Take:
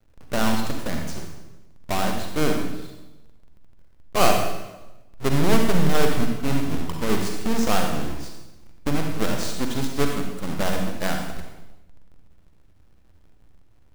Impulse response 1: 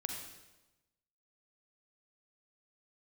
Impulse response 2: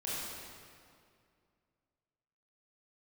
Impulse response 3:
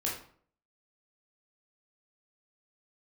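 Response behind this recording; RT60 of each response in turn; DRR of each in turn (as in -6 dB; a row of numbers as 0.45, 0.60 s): 1; 1.1, 2.3, 0.55 s; 2.0, -8.5, -4.5 dB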